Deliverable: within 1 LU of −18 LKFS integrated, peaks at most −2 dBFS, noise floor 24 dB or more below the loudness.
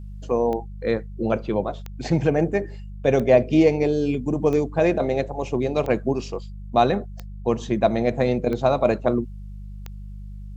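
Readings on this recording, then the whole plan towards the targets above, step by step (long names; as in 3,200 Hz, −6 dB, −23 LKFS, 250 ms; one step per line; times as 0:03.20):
number of clicks 8; mains hum 50 Hz; hum harmonics up to 200 Hz; level of the hum −33 dBFS; integrated loudness −22.5 LKFS; sample peak −4.0 dBFS; target loudness −18.0 LKFS
→ click removal
hum removal 50 Hz, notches 4
level +4.5 dB
brickwall limiter −2 dBFS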